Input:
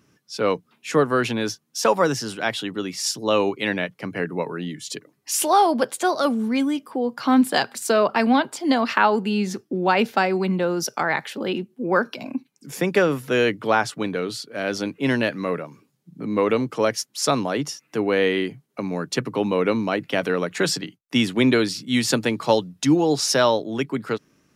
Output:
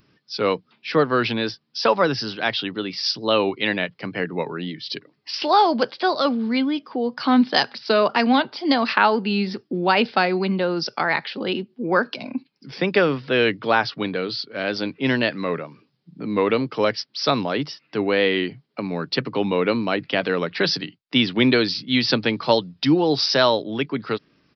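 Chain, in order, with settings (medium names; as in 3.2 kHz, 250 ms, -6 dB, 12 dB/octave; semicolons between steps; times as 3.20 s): wow and flutter 55 cents; resampled via 11.025 kHz; treble shelf 4.3 kHz +12 dB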